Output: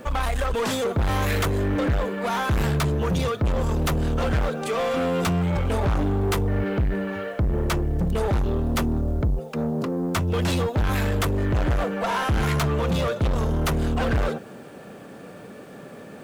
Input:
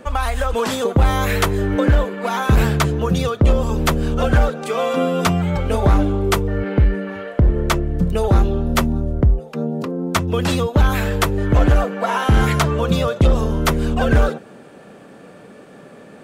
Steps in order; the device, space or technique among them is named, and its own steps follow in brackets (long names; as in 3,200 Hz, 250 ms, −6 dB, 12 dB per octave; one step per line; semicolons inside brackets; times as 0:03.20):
open-reel tape (soft clipping −20.5 dBFS, distortion −7 dB; parametric band 95 Hz +3.5 dB 1.06 octaves; white noise bed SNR 41 dB)